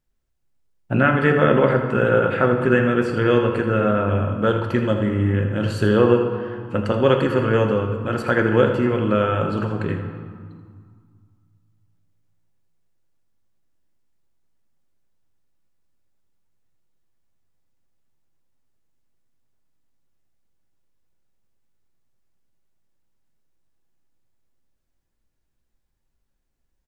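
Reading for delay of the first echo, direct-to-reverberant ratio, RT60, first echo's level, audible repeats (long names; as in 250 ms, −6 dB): 81 ms, 3.5 dB, 2.0 s, −11.0 dB, 1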